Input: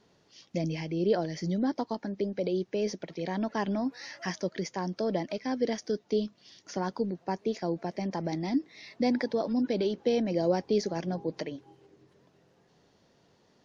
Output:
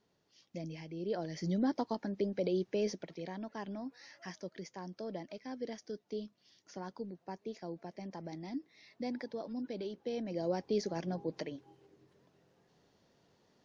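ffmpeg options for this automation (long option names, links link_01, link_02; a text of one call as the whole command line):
ffmpeg -i in.wav -af "volume=4dB,afade=type=in:start_time=1.07:duration=0.48:silence=0.375837,afade=type=out:start_time=2.79:duration=0.6:silence=0.354813,afade=type=in:start_time=10.08:duration=0.85:silence=0.446684" out.wav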